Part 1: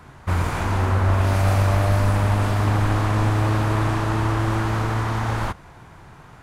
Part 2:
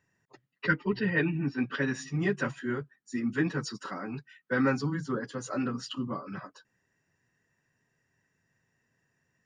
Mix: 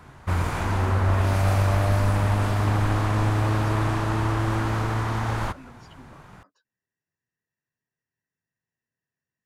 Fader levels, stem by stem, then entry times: -2.5, -16.0 dB; 0.00, 0.00 s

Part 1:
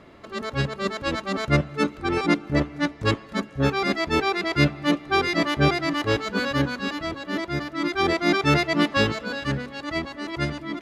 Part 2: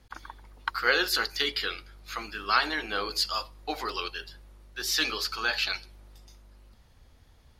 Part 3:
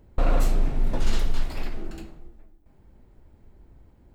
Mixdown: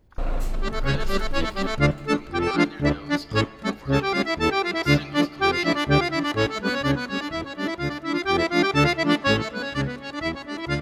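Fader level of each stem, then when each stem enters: +0.5, -13.0, -5.5 dB; 0.30, 0.00, 0.00 s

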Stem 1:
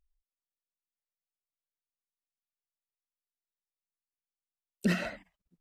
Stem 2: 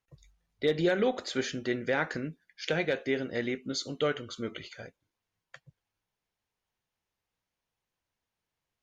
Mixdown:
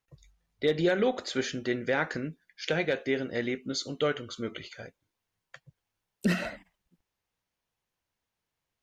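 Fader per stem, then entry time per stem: +1.5, +1.0 dB; 1.40, 0.00 s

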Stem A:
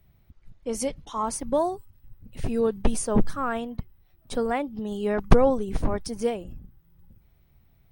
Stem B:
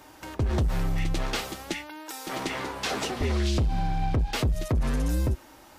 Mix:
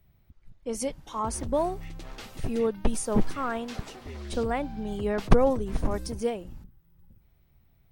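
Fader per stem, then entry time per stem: -2.5, -13.5 dB; 0.00, 0.85 s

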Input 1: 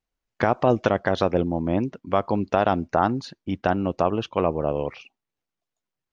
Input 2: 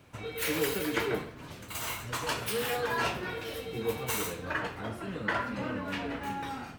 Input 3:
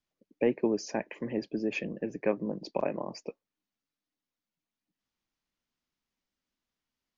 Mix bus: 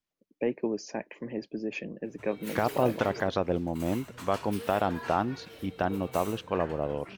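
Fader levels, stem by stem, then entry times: -6.5, -10.5, -2.5 dB; 2.15, 2.05, 0.00 s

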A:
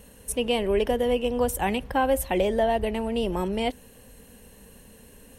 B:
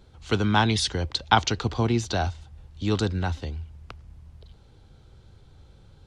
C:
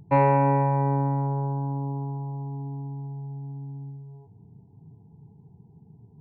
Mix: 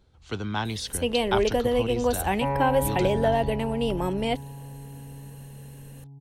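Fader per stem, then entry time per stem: 0.0, -8.0, -8.0 dB; 0.65, 0.00, 2.30 s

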